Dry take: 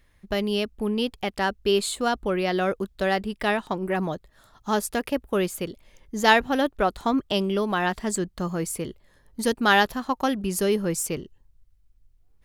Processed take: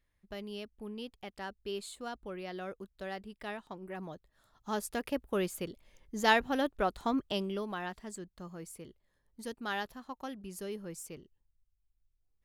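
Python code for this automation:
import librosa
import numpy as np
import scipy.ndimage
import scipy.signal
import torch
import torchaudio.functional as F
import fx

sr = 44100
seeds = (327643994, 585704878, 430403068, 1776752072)

y = fx.gain(x, sr, db=fx.line((3.89, -17.0), (5.13, -8.0), (7.2, -8.0), (8.12, -17.5)))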